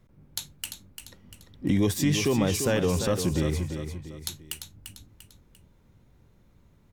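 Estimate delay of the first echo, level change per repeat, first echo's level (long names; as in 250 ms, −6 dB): 345 ms, −7.5 dB, −8.0 dB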